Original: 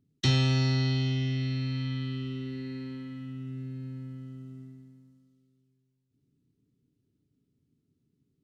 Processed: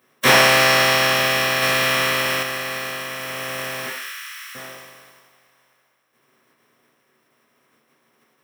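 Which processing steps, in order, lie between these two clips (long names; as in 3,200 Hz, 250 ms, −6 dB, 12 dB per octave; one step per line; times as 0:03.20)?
compressing power law on the bin magnitudes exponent 0.22
0:03.86–0:04.55: Butterworth high-pass 1,300 Hz 36 dB per octave
convolution reverb RT60 0.55 s, pre-delay 3 ms, DRR −6 dB
0:01.62–0:02.43: leveller curve on the samples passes 1
level +2 dB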